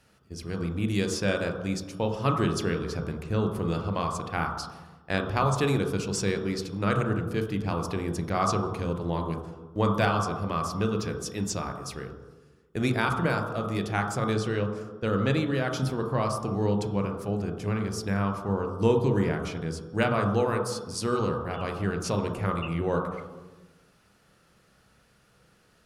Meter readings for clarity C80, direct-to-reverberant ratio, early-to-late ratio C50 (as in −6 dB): 6.5 dB, 2.0 dB, 5.0 dB